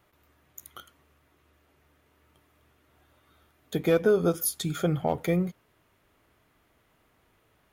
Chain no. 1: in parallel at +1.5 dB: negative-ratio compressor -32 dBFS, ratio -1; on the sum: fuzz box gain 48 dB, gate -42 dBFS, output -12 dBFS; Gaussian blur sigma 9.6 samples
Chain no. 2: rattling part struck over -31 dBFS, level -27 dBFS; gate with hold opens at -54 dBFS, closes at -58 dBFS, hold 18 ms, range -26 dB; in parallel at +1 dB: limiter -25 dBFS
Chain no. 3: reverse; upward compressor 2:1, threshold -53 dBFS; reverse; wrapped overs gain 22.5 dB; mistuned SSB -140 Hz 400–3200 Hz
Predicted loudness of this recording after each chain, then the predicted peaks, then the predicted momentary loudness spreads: -18.0, -23.5, -33.5 LUFS; -11.5, -11.0, -18.0 dBFS; 18, 20, 20 LU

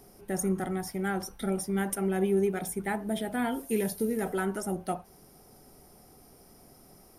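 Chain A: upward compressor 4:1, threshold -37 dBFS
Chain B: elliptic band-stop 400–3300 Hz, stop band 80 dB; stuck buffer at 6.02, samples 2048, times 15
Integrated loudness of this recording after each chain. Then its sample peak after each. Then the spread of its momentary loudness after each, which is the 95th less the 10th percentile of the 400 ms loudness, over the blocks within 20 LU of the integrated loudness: -31.0, -32.5 LUFS; -17.0, -16.5 dBFS; 16, 8 LU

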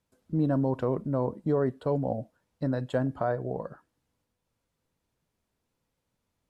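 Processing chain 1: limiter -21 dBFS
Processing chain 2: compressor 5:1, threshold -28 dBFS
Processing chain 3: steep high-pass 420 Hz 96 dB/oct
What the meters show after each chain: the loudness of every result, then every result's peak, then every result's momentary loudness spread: -32.5, -34.5, -34.0 LUFS; -21.0, -15.5, -19.0 dBFS; 7, 7, 10 LU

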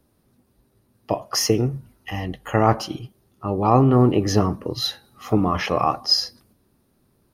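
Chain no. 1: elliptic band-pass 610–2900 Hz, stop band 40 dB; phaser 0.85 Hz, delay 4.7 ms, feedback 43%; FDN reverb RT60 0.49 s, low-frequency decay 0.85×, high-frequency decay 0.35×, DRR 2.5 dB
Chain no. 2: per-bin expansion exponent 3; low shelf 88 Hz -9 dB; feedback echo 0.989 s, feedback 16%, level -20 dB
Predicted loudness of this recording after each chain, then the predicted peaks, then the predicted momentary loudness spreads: -24.5, -26.5 LUFS; -3.0, -7.0 dBFS; 19, 20 LU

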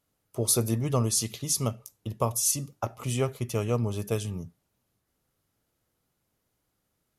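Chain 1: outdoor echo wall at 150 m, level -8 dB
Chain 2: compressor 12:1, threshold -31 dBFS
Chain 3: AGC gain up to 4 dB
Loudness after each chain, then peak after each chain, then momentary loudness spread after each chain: -28.5, -36.5, -24.5 LUFS; -10.0, -17.5, -7.5 dBFS; 14, 8, 13 LU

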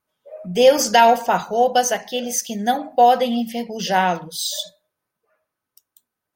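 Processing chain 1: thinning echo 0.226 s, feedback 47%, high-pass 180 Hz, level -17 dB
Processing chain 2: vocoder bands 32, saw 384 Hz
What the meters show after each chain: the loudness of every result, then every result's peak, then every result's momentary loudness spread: -18.5, -18.0 LUFS; -2.0, -3.5 dBFS; 13, 22 LU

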